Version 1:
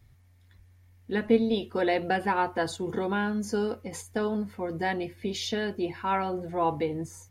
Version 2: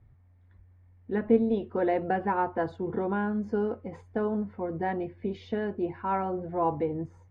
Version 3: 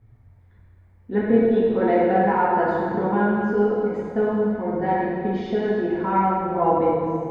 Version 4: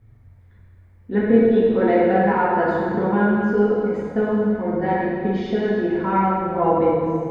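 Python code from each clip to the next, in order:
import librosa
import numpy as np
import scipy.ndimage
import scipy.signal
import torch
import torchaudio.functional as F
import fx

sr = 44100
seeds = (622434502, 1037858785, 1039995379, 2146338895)

y1 = scipy.signal.sosfilt(scipy.signal.butter(2, 1300.0, 'lowpass', fs=sr, output='sos'), x)
y2 = fx.rev_plate(y1, sr, seeds[0], rt60_s=2.2, hf_ratio=0.8, predelay_ms=0, drr_db=-6.0)
y2 = y2 * librosa.db_to_amplitude(1.5)
y3 = fx.peak_eq(y2, sr, hz=820.0, db=-4.5, octaves=0.78)
y3 = fx.hum_notches(y3, sr, base_hz=60, count=7)
y3 = y3 * librosa.db_to_amplitude(3.5)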